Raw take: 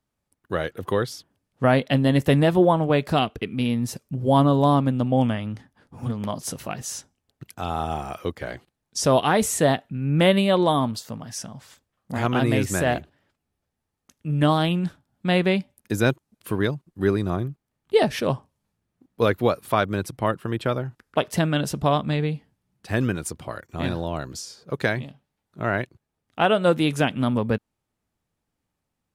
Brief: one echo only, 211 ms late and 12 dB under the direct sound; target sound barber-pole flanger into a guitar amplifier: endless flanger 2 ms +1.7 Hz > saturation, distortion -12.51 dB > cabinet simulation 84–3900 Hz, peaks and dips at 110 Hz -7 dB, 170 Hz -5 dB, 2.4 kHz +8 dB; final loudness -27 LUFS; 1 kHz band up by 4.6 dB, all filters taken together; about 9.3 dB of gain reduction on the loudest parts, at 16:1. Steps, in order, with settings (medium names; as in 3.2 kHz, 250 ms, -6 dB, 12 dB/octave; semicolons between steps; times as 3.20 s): peaking EQ 1 kHz +6 dB; compression 16:1, threshold -20 dBFS; delay 211 ms -12 dB; endless flanger 2 ms +1.7 Hz; saturation -25 dBFS; cabinet simulation 84–3900 Hz, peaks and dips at 110 Hz -7 dB, 170 Hz -5 dB, 2.4 kHz +8 dB; trim +7 dB